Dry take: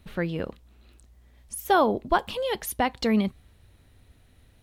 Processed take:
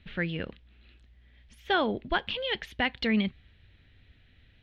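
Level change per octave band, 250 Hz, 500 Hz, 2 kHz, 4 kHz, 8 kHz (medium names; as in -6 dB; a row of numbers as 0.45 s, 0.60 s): -3.5 dB, -6.5 dB, +1.5 dB, +3.0 dB, under -20 dB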